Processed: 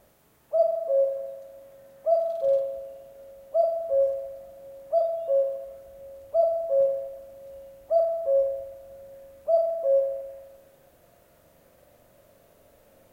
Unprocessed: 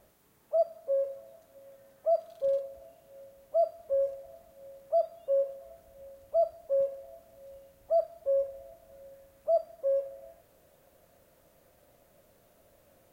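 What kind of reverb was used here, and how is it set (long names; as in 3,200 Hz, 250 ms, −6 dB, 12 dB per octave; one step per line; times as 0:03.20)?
spring reverb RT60 1.3 s, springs 42 ms, chirp 65 ms, DRR 3.5 dB
level +3 dB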